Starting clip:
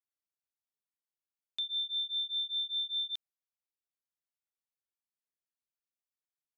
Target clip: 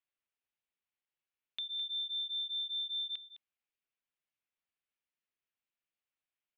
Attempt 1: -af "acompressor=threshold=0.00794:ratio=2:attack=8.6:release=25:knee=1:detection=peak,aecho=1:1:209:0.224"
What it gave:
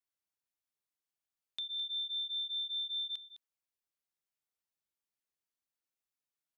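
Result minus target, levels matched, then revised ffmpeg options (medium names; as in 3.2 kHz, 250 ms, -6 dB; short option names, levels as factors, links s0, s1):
2 kHz band -5.5 dB
-af "acompressor=threshold=0.00794:ratio=2:attack=8.6:release=25:knee=1:detection=peak,lowpass=f=2700:t=q:w=2.1,aecho=1:1:209:0.224"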